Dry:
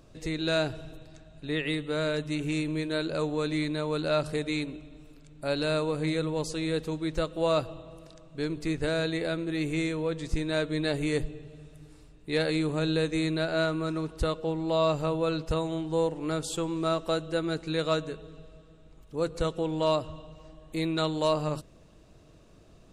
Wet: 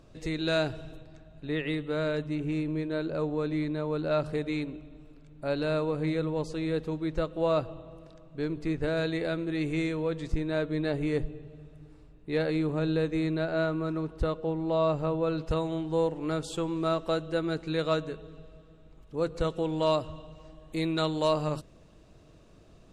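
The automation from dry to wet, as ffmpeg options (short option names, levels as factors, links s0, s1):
-af "asetnsamples=n=441:p=0,asendcmd='1.01 lowpass f 2100;2.27 lowpass f 1100;4.11 lowpass f 1800;8.97 lowpass f 3300;10.32 lowpass f 1500;15.38 lowpass f 3600;19.5 lowpass f 7800',lowpass=f=5400:p=1"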